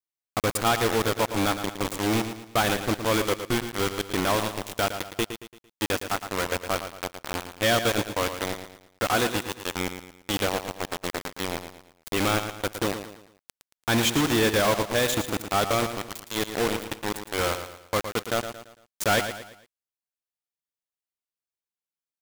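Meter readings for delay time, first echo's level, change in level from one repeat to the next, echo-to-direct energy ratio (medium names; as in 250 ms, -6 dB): 113 ms, -9.5 dB, -8.0 dB, -8.5 dB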